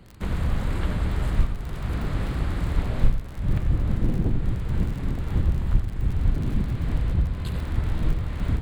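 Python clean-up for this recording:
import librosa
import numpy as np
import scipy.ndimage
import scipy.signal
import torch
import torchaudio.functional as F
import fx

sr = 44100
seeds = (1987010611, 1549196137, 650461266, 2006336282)

y = fx.fix_declick_ar(x, sr, threshold=6.5)
y = fx.fix_echo_inverse(y, sr, delay_ms=91, level_db=-9.5)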